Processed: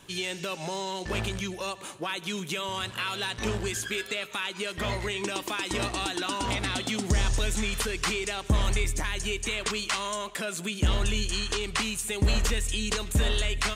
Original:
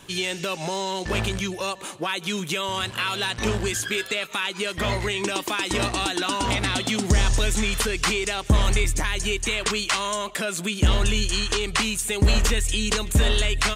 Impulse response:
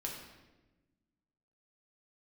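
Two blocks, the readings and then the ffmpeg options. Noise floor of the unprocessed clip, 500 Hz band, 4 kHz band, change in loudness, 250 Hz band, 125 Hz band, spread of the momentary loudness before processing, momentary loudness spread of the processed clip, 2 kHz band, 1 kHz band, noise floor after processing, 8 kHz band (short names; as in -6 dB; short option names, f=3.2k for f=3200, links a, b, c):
-38 dBFS, -5.5 dB, -5.5 dB, -5.5 dB, -5.5 dB, -5.5 dB, 6 LU, 6 LU, -5.5 dB, -5.5 dB, -43 dBFS, -5.5 dB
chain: -filter_complex "[0:a]asplit=2[a][b];[1:a]atrim=start_sample=2205,adelay=75[c];[b][c]afir=irnorm=-1:irlink=0,volume=-20dB[d];[a][d]amix=inputs=2:normalize=0,volume=-5.5dB"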